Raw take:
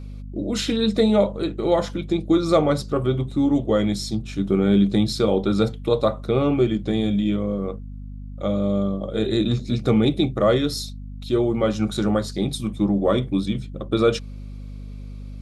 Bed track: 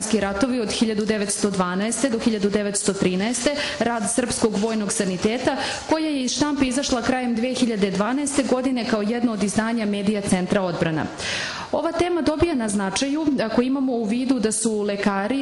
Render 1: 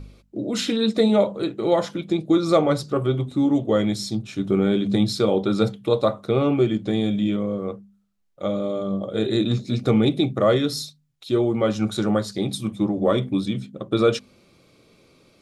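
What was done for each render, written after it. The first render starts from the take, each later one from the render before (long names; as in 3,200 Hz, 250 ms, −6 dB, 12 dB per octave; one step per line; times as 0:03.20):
hum removal 50 Hz, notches 5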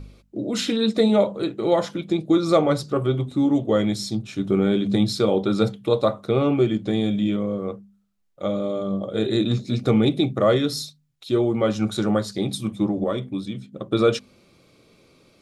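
0:13.04–0:13.72: clip gain −5.5 dB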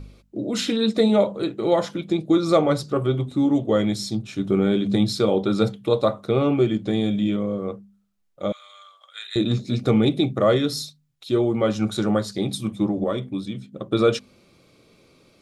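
0:08.52–0:09.36: inverse Chebyshev high-pass filter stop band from 240 Hz, stop band 80 dB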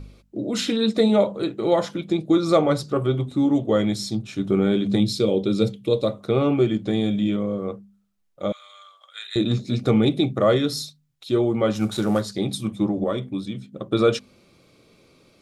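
0:05.00–0:06.21: flat-topped bell 1,100 Hz −9.5 dB
0:11.75–0:12.22: variable-slope delta modulation 64 kbit/s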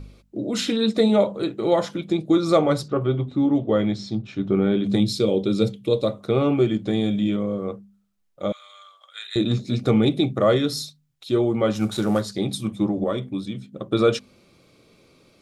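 0:02.88–0:04.84: high-frequency loss of the air 160 metres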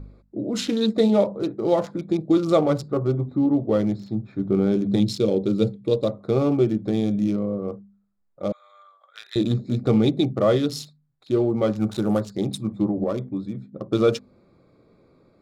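adaptive Wiener filter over 15 samples
dynamic equaliser 1,700 Hz, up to −4 dB, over −42 dBFS, Q 0.97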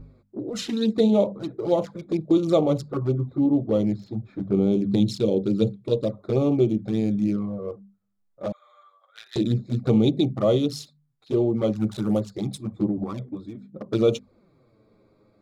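flanger swept by the level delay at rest 10 ms, full sweep at −16.5 dBFS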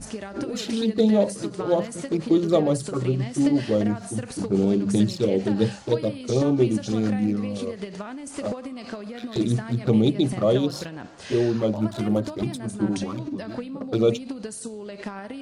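mix in bed track −13.5 dB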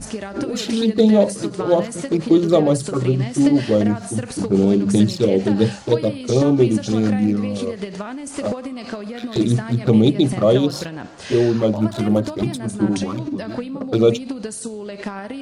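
level +5.5 dB
brickwall limiter −3 dBFS, peak gain reduction 1.5 dB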